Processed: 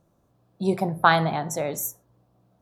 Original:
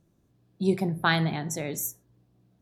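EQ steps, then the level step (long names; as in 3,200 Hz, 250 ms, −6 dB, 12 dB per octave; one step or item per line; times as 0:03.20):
flat-topped bell 830 Hz +9.5 dB
high-shelf EQ 10,000 Hz +3.5 dB
0.0 dB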